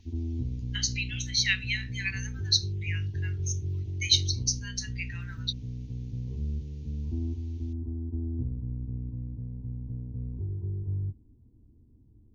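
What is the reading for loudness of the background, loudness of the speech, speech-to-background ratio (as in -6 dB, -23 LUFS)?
-35.5 LUFS, -30.0 LUFS, 5.5 dB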